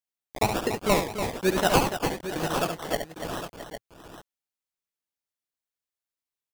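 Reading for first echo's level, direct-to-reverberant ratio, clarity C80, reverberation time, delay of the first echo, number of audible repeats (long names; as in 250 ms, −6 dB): −7.0 dB, no reverb audible, no reverb audible, no reverb audible, 70 ms, 4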